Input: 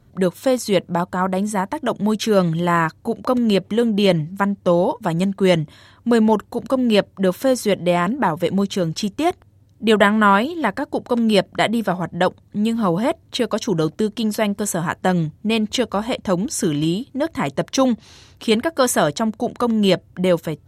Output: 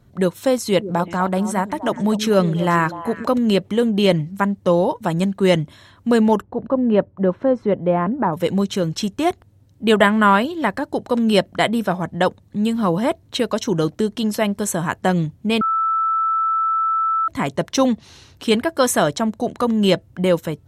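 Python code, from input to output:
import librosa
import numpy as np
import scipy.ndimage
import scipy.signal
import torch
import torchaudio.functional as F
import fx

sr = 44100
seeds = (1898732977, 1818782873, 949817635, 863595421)

y = fx.echo_stepped(x, sr, ms=124, hz=280.0, octaves=1.4, feedback_pct=70, wet_db=-8.0, at=(0.61, 3.32))
y = fx.lowpass(y, sr, hz=1200.0, slope=12, at=(6.42, 8.33))
y = fx.edit(y, sr, fx.bleep(start_s=15.61, length_s=1.67, hz=1320.0, db=-16.0), tone=tone)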